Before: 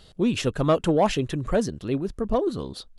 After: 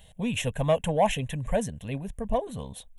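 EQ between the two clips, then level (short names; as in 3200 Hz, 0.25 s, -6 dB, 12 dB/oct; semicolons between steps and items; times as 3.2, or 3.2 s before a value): high shelf 6500 Hz +9.5 dB; fixed phaser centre 1300 Hz, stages 6; 0.0 dB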